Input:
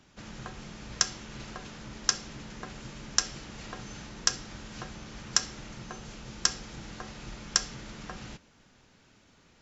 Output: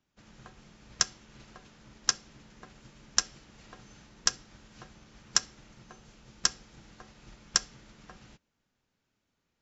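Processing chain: upward expansion 1.5:1, over -60 dBFS

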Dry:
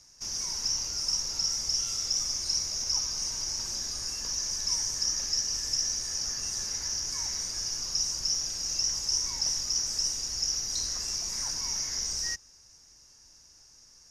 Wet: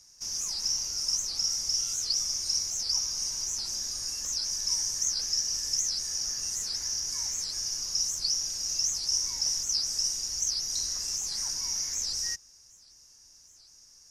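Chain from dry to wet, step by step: treble shelf 5.2 kHz +10 dB; warped record 78 rpm, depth 250 cents; trim -5 dB

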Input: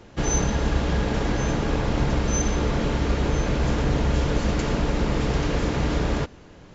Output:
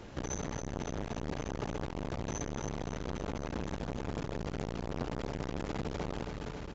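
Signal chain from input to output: compression 6:1, threshold -29 dBFS, peak gain reduction 12 dB; on a send: feedback delay 275 ms, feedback 60%, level -5.5 dB; on the sum: transformer saturation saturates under 610 Hz

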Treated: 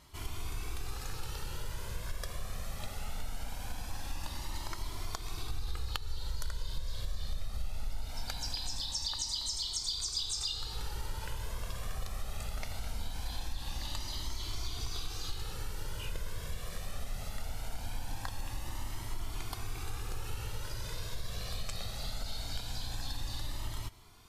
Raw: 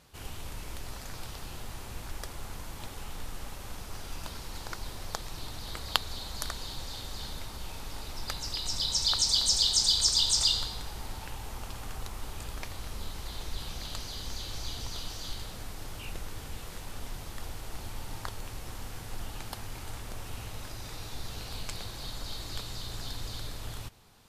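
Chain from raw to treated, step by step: 5.49–8.08 s: bass shelf 110 Hz +11 dB; compression 5:1, threshold -35 dBFS, peak gain reduction 15 dB; Shepard-style flanger rising 0.21 Hz; trim +5 dB

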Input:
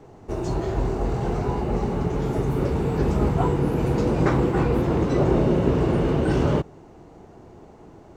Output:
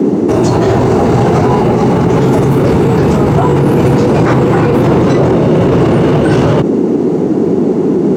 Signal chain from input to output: high-pass 96 Hz 24 dB/octave; band noise 170–430 Hz -35 dBFS; loudness maximiser +25.5 dB; trim -1 dB

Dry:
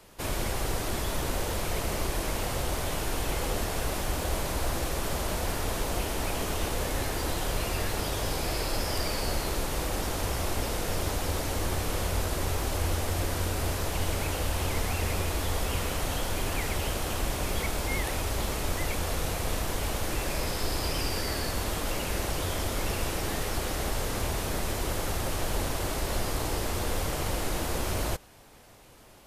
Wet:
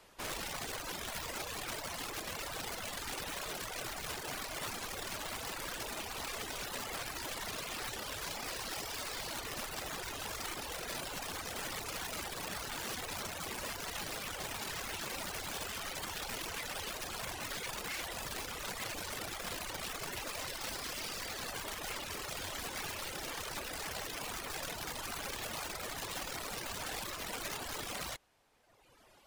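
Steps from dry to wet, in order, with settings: integer overflow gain 25.5 dB; reverb removal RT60 1.5 s; overdrive pedal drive 6 dB, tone 5.2 kHz, clips at -24 dBFS; trim -5.5 dB

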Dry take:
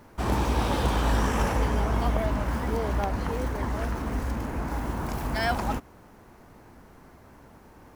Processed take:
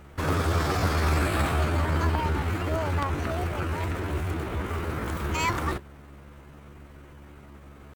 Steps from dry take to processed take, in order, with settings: hum 50 Hz, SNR 21 dB; pitch shift +6 st

